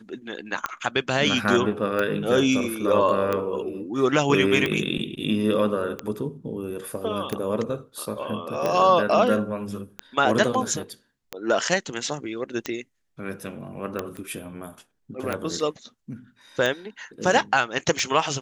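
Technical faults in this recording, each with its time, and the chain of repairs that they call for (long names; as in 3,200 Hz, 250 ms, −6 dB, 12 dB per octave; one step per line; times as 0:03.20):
scratch tick 45 rpm −12 dBFS
0:14.17: click −23 dBFS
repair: click removal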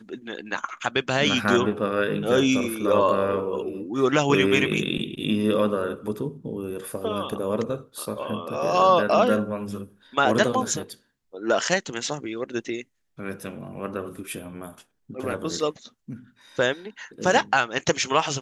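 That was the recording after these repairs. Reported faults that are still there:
none of them is left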